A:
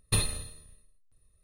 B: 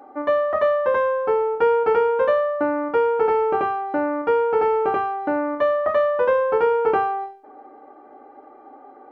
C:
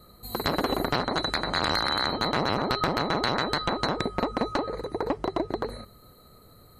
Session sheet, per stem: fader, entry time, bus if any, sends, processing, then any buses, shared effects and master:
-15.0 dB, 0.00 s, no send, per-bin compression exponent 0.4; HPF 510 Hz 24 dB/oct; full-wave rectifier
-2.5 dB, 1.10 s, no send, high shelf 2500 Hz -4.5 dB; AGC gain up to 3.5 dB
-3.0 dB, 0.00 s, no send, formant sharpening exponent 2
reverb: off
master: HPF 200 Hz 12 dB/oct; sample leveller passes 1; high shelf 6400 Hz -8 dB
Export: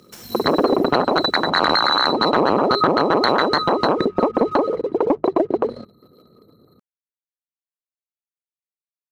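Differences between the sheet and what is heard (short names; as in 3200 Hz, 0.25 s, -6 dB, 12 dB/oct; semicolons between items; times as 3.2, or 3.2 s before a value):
stem A -15.0 dB -> -7.0 dB; stem B: muted; stem C -3.0 dB -> +7.5 dB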